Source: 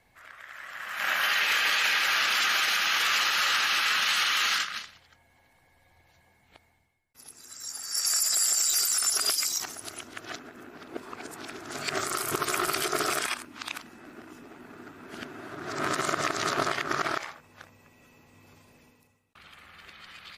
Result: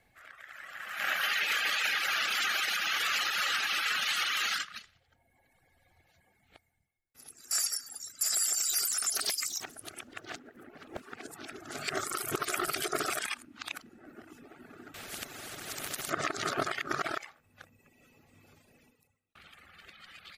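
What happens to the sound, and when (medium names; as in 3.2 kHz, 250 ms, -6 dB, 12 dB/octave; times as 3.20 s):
7.51–8.21 s: reverse
8.89–11.23 s: loudspeaker Doppler distortion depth 0.96 ms
14.94–16.10 s: spectrum-flattening compressor 4:1
whole clip: reverb removal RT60 1 s; peaking EQ 5.3 kHz -2.5 dB; band-stop 990 Hz, Q 5; trim -2 dB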